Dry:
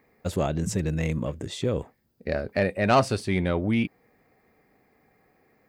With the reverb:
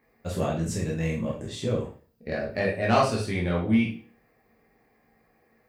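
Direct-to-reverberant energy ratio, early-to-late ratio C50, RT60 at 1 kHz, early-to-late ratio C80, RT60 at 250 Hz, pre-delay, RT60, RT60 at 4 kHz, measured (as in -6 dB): -4.0 dB, 6.0 dB, 0.40 s, 12.0 dB, 0.45 s, 6 ms, 0.40 s, 0.40 s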